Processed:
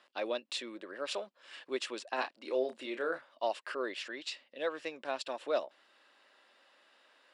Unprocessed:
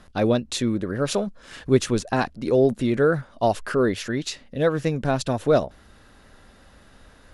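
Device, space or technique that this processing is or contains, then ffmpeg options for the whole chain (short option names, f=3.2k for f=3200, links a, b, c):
phone speaker on a table: -filter_complex "[0:a]asettb=1/sr,asplit=3[a][b][c];[a]atrim=end=2.154[d];[b]atrim=start=2.15:end=3.19,asetpts=PTS-STARTPTS,afade=t=in:d=0.004:c=qsin,afade=t=out:st=1.036:d=0.004:c=qsin,asplit=2[e][f];[f]adelay=31,volume=-8dB[g];[e][g]amix=inputs=2:normalize=0,atrim=end_sample=45864[h];[c]atrim=start=3.186[i];[d][h]acrossfade=d=0.004:c1=hsin:c2=qsin[j];[j][i]acrossfade=d=0.004:c1=qsin:c2=hsin,highpass=f=410:w=0.5412,highpass=f=410:w=1.3066,equalizer=f=440:t=q:w=4:g=-9,equalizer=f=730:t=q:w=4:g=-5,equalizer=f=1.4k:t=q:w=4:g=-4,equalizer=f=2.8k:t=q:w=4:g=5,equalizer=f=6.3k:t=q:w=4:g=-10,lowpass=f=7.8k:w=0.5412,lowpass=f=7.8k:w=1.3066,volume=-8dB"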